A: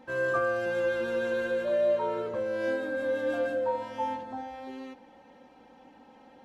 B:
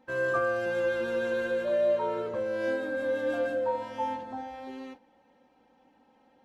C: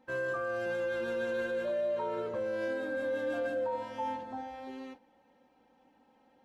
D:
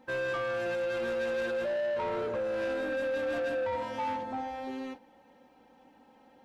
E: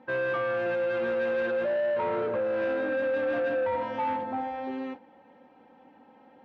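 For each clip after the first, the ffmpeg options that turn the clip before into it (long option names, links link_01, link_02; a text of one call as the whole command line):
ffmpeg -i in.wav -af "agate=range=-9dB:threshold=-46dB:ratio=16:detection=peak" out.wav
ffmpeg -i in.wav -af "alimiter=limit=-24dB:level=0:latency=1:release=32,volume=-2.5dB" out.wav
ffmpeg -i in.wav -af "asoftclip=type=tanh:threshold=-35dB,volume=6.5dB" out.wav
ffmpeg -i in.wav -af "highpass=100,lowpass=2500,volume=4dB" out.wav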